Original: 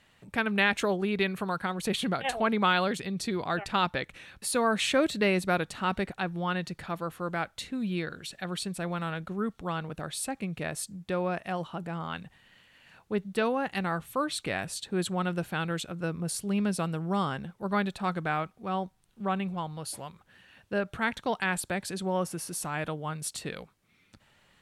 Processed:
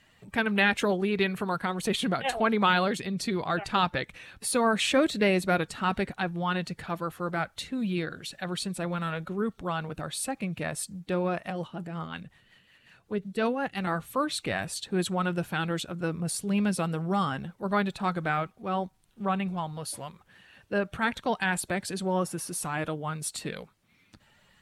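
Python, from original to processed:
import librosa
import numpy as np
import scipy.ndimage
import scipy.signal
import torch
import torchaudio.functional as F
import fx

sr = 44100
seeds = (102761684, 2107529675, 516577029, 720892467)

y = fx.spec_quant(x, sr, step_db=15)
y = fx.rotary(y, sr, hz=5.5, at=(11.5, 13.87))
y = F.gain(torch.from_numpy(y), 2.0).numpy()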